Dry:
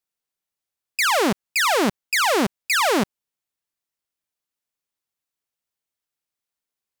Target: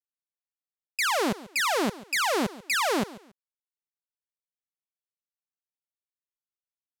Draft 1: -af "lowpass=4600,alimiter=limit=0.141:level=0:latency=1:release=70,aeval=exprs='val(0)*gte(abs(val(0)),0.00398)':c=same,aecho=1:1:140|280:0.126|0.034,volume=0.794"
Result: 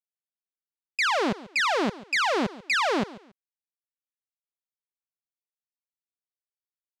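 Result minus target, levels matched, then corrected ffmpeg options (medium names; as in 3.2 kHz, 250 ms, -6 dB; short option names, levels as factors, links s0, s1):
8 kHz band -7.5 dB
-af "lowpass=16000,alimiter=limit=0.141:level=0:latency=1:release=70,aeval=exprs='val(0)*gte(abs(val(0)),0.00398)':c=same,aecho=1:1:140|280:0.126|0.034,volume=0.794"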